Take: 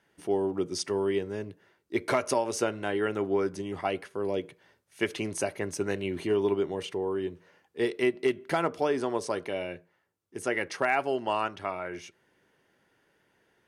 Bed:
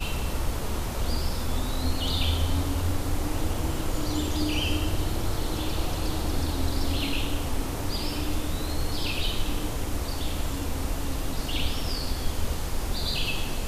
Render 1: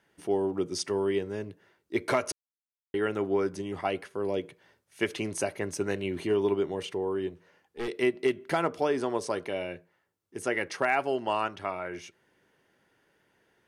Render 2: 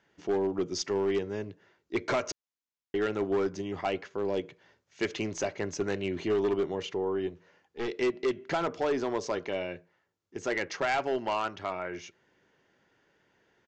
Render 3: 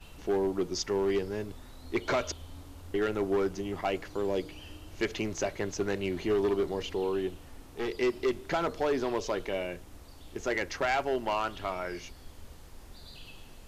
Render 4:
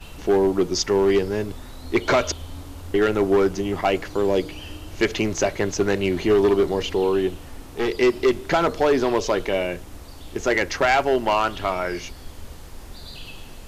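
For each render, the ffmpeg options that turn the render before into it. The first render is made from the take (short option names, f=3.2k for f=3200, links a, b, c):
-filter_complex "[0:a]asettb=1/sr,asplit=3[a][b][c];[a]atrim=end=7.294[d];[b]atrim=start=7.29:end=7.88,asetpts=PTS-STARTPTS,afade=t=in:d=0.004:c=qsin,afade=t=out:st=0.586:d=0.004:c=qsin,aeval=exprs='(tanh(31.6*val(0)+0.45)-tanh(0.45))/31.6':c=same[e];[c]atrim=start=7.876[f];[d][e]acrossfade=d=0.004:c1=hsin:c2=qsin[g];[g][f]acrossfade=d=0.004:c1=qsin:c2=hsin,asplit=3[h][i][j];[h]atrim=end=2.32,asetpts=PTS-STARTPTS,afade=t=out:st=2.316:d=0.004:c=hsin[k];[i]atrim=start=2.32:end=2.94,asetpts=PTS-STARTPTS,volume=0[l];[j]atrim=start=2.94,asetpts=PTS-STARTPTS,afade=t=in:d=0.004:c=hsin[m];[k][l][m]concat=n=3:v=0:a=1"
-af "aeval=exprs='0.224*(cos(1*acos(clip(val(0)/0.224,-1,1)))-cos(1*PI/2))+0.01*(cos(4*acos(clip(val(0)/0.224,-1,1)))-cos(4*PI/2))':c=same,aresample=16000,asoftclip=type=hard:threshold=-22.5dB,aresample=44100"
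-filter_complex "[1:a]volume=-20.5dB[a];[0:a][a]amix=inputs=2:normalize=0"
-af "volume=10dB"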